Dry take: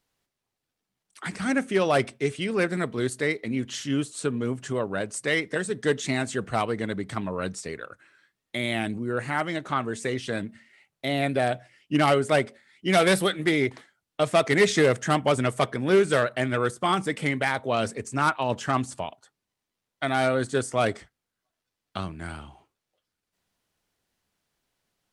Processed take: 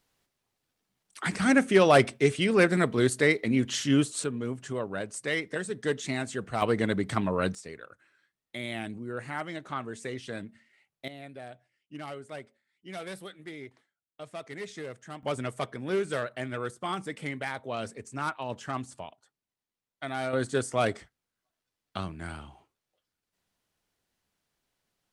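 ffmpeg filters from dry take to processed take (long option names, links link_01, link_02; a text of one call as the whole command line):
ffmpeg -i in.wav -af "asetnsamples=nb_out_samples=441:pad=0,asendcmd='4.24 volume volume -5dB;6.62 volume volume 2.5dB;7.55 volume volume -8dB;11.08 volume volume -19.5dB;15.23 volume volume -9dB;20.33 volume volume -2.5dB',volume=3dB" out.wav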